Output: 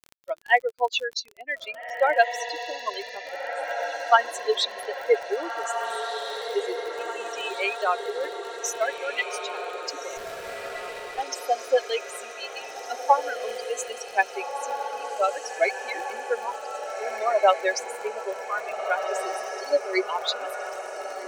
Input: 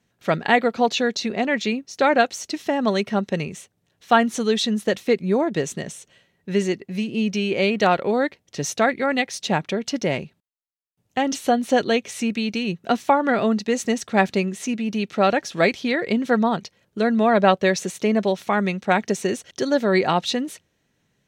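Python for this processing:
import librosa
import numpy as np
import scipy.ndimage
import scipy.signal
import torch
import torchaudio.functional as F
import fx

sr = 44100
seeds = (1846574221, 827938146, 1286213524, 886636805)

y = fx.bin_expand(x, sr, power=3.0)
y = scipy.signal.sosfilt(scipy.signal.butter(8, 400.0, 'highpass', fs=sr, output='sos'), y)
y = fx.echo_diffused(y, sr, ms=1700, feedback_pct=65, wet_db=-7)
y = fx.dmg_crackle(y, sr, seeds[0], per_s=38.0, level_db=-36.0)
y = fx.running_max(y, sr, window=5, at=(10.17, 11.2))
y = F.gain(torch.from_numpy(y), 3.5).numpy()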